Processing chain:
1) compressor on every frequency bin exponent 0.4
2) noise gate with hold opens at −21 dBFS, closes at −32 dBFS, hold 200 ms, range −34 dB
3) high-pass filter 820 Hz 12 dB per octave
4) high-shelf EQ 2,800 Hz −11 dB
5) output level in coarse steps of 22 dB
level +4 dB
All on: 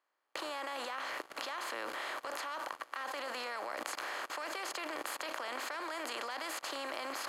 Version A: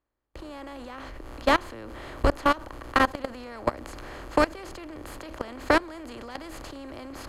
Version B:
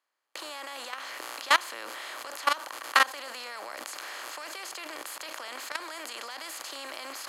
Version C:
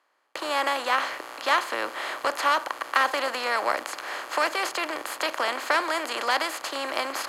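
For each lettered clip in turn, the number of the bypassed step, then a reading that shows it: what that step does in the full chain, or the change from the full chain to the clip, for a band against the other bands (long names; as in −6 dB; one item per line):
3, change in crest factor +3.5 dB
4, 250 Hz band −8.0 dB
5, change in momentary loudness spread +5 LU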